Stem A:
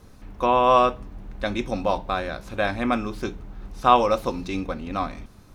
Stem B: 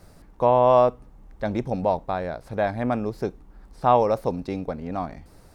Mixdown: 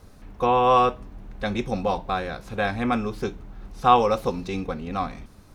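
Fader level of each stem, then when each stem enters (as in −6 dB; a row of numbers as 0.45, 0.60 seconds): −1.5, −6.5 decibels; 0.00, 0.00 seconds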